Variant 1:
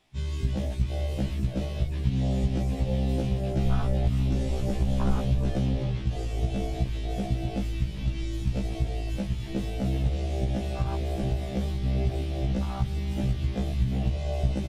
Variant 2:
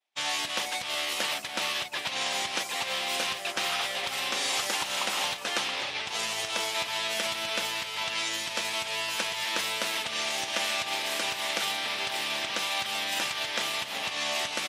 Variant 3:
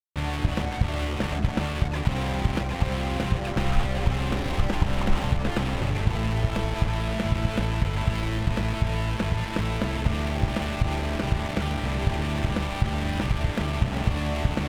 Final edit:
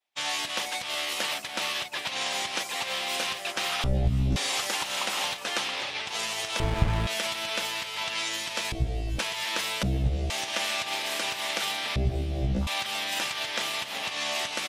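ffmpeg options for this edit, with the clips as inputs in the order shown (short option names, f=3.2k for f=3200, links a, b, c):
-filter_complex "[0:a]asplit=4[a][b][c][d];[1:a]asplit=6[e][f][g][h][i][j];[e]atrim=end=3.842[k];[a]atrim=start=3.838:end=4.362[l];[f]atrim=start=4.358:end=6.602[m];[2:a]atrim=start=6.598:end=7.072[n];[g]atrim=start=7.068:end=8.722[o];[b]atrim=start=8.718:end=9.192[p];[h]atrim=start=9.188:end=9.832[q];[c]atrim=start=9.828:end=10.302[r];[i]atrim=start=10.298:end=11.962[s];[d]atrim=start=11.958:end=12.672[t];[j]atrim=start=12.668[u];[k][l]acrossfade=d=0.004:c1=hsin:c2=hsin[v];[v][m]acrossfade=d=0.004:c1=hsin:c2=hsin[w];[w][n]acrossfade=d=0.004:c1=hsin:c2=hsin[x];[x][o]acrossfade=d=0.004:c1=hsin:c2=hsin[y];[y][p]acrossfade=d=0.004:c1=hsin:c2=hsin[z];[z][q]acrossfade=d=0.004:c1=hsin:c2=hsin[aa];[aa][r]acrossfade=d=0.004:c1=hsin:c2=hsin[ab];[ab][s]acrossfade=d=0.004:c1=hsin:c2=hsin[ac];[ac][t]acrossfade=d=0.004:c1=hsin:c2=hsin[ad];[ad][u]acrossfade=d=0.004:c1=hsin:c2=hsin"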